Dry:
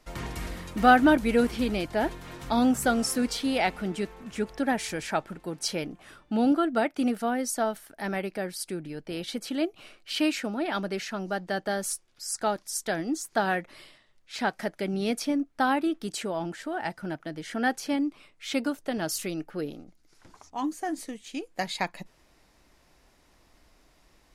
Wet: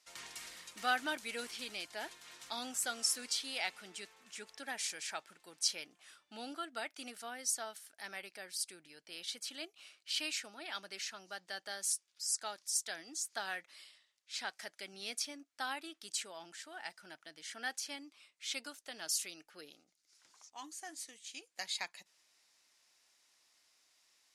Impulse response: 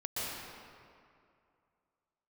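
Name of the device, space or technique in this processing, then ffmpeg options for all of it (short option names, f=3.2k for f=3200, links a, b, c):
piezo pickup straight into a mixer: -af "lowpass=7.4k,aderivative,volume=2dB"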